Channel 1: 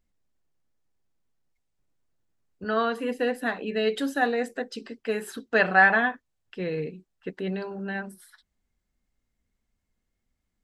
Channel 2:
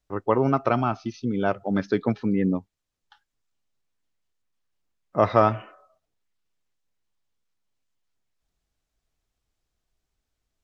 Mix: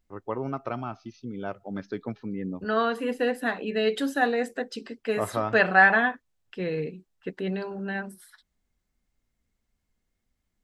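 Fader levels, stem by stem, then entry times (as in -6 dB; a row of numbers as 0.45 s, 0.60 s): +0.5 dB, -10.0 dB; 0.00 s, 0.00 s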